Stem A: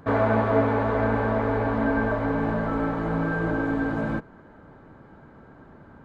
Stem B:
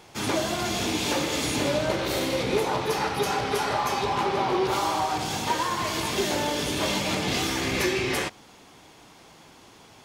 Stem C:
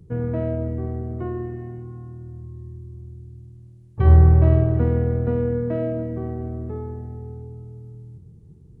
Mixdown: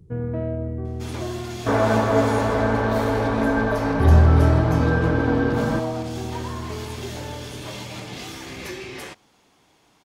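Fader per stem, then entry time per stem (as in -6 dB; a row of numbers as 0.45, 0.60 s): +2.5, -9.0, -2.0 dB; 1.60, 0.85, 0.00 s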